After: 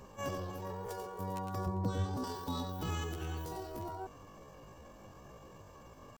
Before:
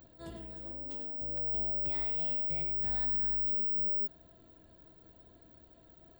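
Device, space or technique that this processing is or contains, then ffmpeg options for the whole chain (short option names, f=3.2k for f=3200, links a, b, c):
chipmunk voice: -filter_complex "[0:a]asetrate=74167,aresample=44100,atempo=0.594604,asettb=1/sr,asplit=3[a][b][c];[a]atrim=end=1.664[d];[b]atrim=start=1.66:end=2.24,asetpts=PTS-STARTPTS,afade=t=in:d=0.004:c=qsin,afade=t=out:st=0.576:d=0.004:c=qsin,tiltshelf=f=650:g=8[e];[c]atrim=start=2.236[f];[d][e]acrossfade=d=0.004:c1=hsin:c2=qsin[g];[g][f]acrossfade=d=0.004:c1=qsin:c2=hsin,volume=7.5dB"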